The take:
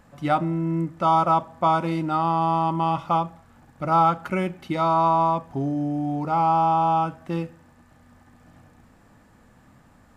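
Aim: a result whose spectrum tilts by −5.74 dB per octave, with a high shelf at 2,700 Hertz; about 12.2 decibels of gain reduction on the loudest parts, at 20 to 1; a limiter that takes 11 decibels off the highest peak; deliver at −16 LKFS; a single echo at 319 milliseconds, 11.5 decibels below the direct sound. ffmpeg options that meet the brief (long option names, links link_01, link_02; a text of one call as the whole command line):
ffmpeg -i in.wav -af "highshelf=frequency=2700:gain=-8,acompressor=threshold=-28dB:ratio=20,alimiter=level_in=5dB:limit=-24dB:level=0:latency=1,volume=-5dB,aecho=1:1:319:0.266,volume=21dB" out.wav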